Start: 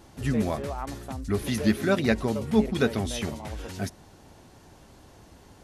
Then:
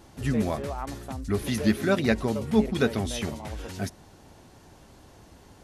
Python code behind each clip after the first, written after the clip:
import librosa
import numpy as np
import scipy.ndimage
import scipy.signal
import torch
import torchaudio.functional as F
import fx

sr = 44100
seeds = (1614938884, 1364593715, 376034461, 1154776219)

y = x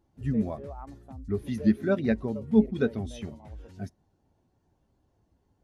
y = fx.spectral_expand(x, sr, expansion=1.5)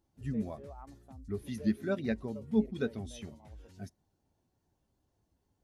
y = fx.high_shelf(x, sr, hz=3200.0, db=8.5)
y = y * 10.0 ** (-7.5 / 20.0)